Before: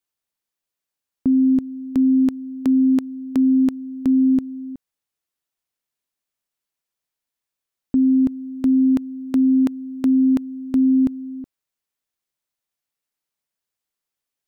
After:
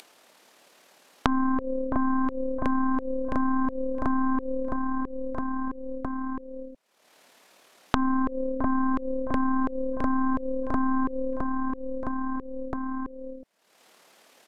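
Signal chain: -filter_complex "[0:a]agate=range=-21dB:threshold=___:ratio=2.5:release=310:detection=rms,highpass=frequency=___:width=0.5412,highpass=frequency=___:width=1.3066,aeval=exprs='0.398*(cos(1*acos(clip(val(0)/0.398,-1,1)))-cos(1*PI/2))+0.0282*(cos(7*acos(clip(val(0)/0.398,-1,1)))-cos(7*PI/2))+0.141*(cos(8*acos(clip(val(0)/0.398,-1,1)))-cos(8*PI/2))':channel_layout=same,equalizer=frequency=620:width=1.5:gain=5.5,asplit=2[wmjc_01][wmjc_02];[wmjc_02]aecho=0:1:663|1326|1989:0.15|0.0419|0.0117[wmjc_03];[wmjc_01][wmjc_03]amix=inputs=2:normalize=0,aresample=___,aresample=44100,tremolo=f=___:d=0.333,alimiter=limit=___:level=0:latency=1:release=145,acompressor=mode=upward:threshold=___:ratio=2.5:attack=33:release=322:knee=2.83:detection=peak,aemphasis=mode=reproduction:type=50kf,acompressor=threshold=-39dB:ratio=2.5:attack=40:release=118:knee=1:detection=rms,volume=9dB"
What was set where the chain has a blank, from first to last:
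-26dB, 190, 190, 32000, 37, -12.5dB, -24dB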